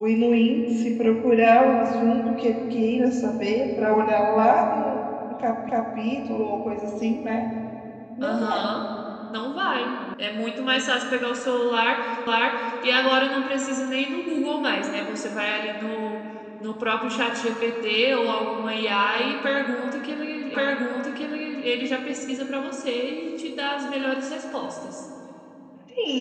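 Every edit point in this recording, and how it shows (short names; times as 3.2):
5.69 repeat of the last 0.29 s
10.14 sound cut off
12.27 repeat of the last 0.55 s
20.54 repeat of the last 1.12 s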